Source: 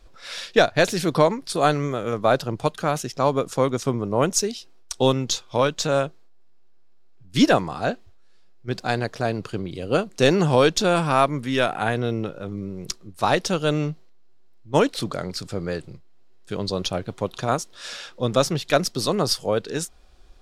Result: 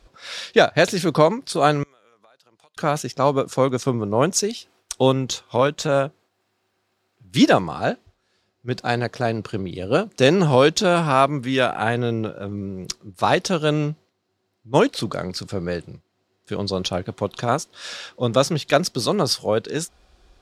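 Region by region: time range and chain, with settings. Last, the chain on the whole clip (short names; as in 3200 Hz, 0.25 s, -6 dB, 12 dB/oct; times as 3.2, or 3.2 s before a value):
1.83–2.77 LPF 1800 Hz 6 dB/oct + differentiator + compressor 8:1, threshold -53 dBFS
4.49–7.37 bell 5000 Hz -5 dB 1.2 oct + mismatched tape noise reduction encoder only
whole clip: HPF 43 Hz; high shelf 11000 Hz -6 dB; gain +2 dB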